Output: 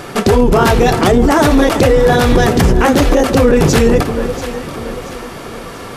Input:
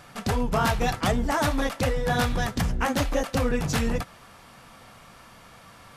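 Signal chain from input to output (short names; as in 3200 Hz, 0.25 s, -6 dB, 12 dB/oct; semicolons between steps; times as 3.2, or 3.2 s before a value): bell 380 Hz +14.5 dB 0.69 oct; echo with dull and thin repeats by turns 0.342 s, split 870 Hz, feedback 66%, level -14 dB; maximiser +18.5 dB; gain -1 dB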